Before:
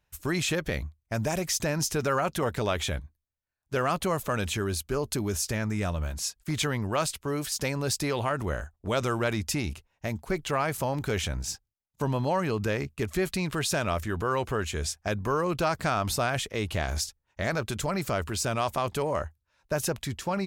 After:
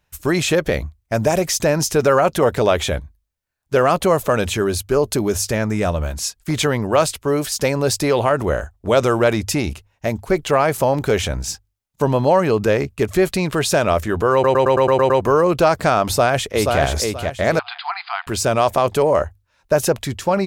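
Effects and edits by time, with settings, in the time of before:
14.33 stutter in place 0.11 s, 8 plays
16.07–16.81 echo throw 0.48 s, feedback 30%, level -4 dB
17.59–18.27 brick-wall FIR band-pass 700–5000 Hz
whole clip: notches 50/100 Hz; dynamic EQ 530 Hz, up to +7 dB, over -42 dBFS, Q 0.93; gain +7.5 dB

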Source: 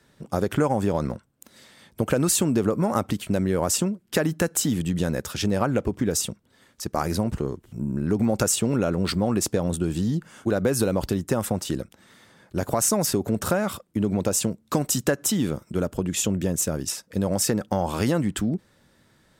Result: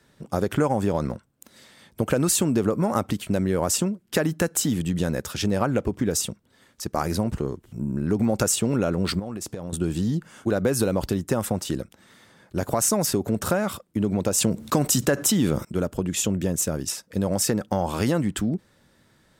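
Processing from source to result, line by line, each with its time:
9.19–9.73 compressor 12:1, threshold -28 dBFS
14.38–15.65 fast leveller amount 50%

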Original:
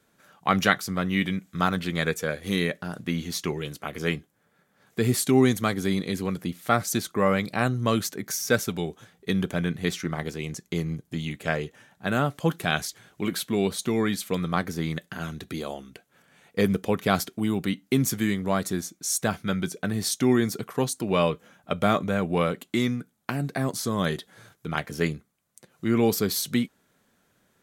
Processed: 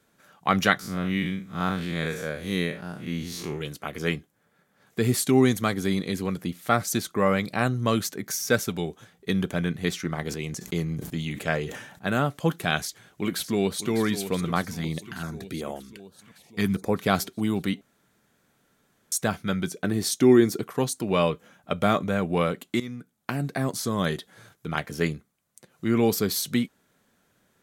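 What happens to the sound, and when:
0.79–3.61 time blur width 0.115 s
10.25–12.1 sustainer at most 64 dB/s
12.79–13.91 echo throw 0.6 s, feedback 65%, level -10.5 dB
14.65–16.96 stepped notch 5.2 Hz 370–4200 Hz
17.81–19.12 room tone
19.84–20.69 bell 340 Hz +8.5 dB 0.57 oct
22.8–23.32 fade in, from -15 dB

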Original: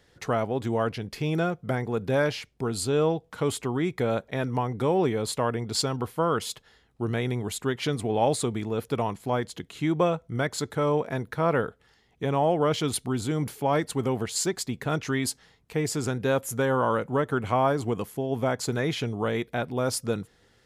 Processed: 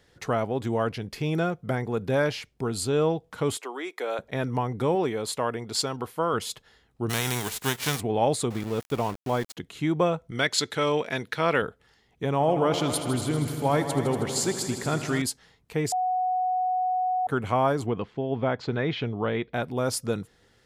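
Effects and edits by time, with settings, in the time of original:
3.57–4.19 Bessel high-pass 540 Hz, order 8
4.95–6.34 low shelf 200 Hz -9 dB
7.09–7.99 spectral whitening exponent 0.3
8.5–9.57 sample gate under -35.5 dBFS
10.31–11.62 weighting filter D
12.32–15.22 multi-head echo 79 ms, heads all three, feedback 65%, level -14 dB
15.92–17.27 bleep 738 Hz -22.5 dBFS
17.86–19.54 LPF 3900 Hz 24 dB/oct

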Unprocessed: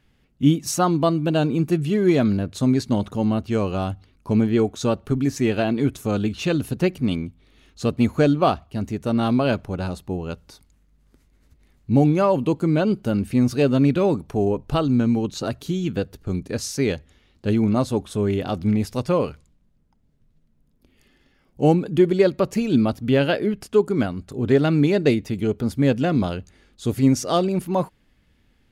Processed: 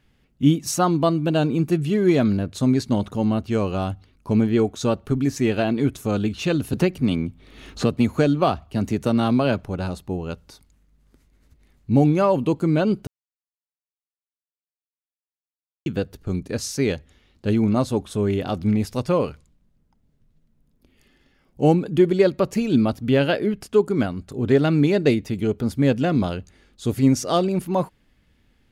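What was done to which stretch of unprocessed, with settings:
6.73–9.59 three-band squash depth 70%
13.07–15.86 mute

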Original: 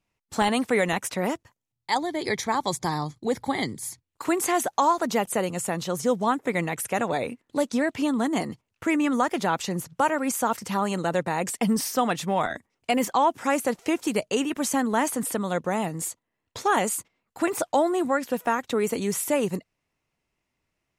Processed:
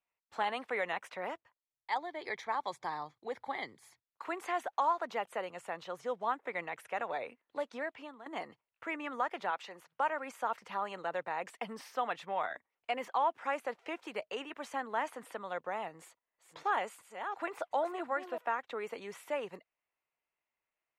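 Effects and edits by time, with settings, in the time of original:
7.77–8.26 fade out linear, to -15.5 dB
9.5–9.95 HPF 500 Hz 6 dB/oct
15.9–18.38 reverse delay 0.366 s, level -7.5 dB
whole clip: three-band isolator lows -19 dB, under 480 Hz, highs -21 dB, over 3400 Hz; gain -8 dB

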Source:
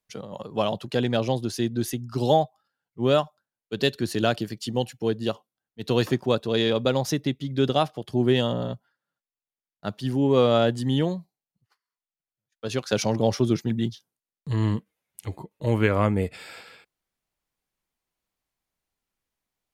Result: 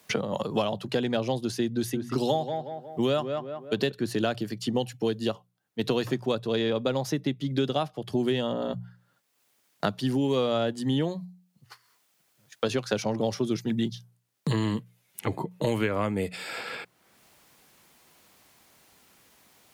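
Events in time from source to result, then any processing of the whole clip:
1.76–3.92 tape echo 0.184 s, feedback 29%, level -7 dB, low-pass 1900 Hz
whole clip: HPF 100 Hz; notches 60/120/180 Hz; three-band squash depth 100%; gain -3.5 dB

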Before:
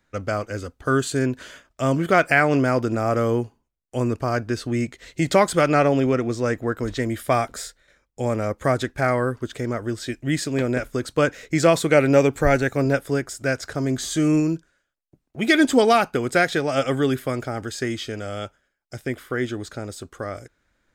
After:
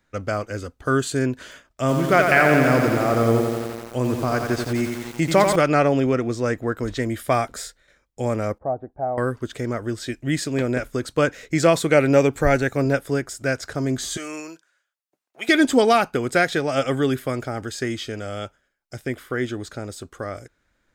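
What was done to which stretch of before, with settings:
1.43–5.56 lo-fi delay 87 ms, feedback 80%, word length 6-bit, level -5 dB
8.58–9.18 ladder low-pass 820 Hz, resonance 70%
14.17–15.49 HPF 790 Hz

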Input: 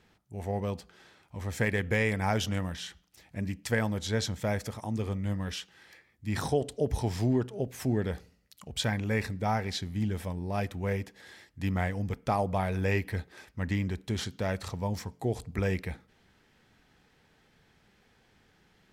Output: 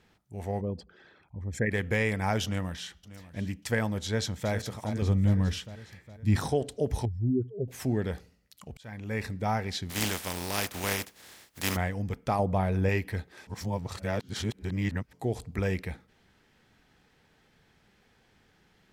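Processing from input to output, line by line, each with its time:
0.61–1.71 formant sharpening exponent 2
2.44–3.42 echo throw 0.59 s, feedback 15%, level -16.5 dB
4.04–4.52 echo throw 0.41 s, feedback 55%, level -9.5 dB
5.02–6.36 low shelf 270 Hz +11 dB
7.05–7.68 spectral contrast raised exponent 2.6
8.69–9.32 auto swell 0.564 s
9.89–11.75 spectral contrast lowered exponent 0.37
12.39–12.89 tilt shelf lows +4 dB
13.47–15.13 reverse

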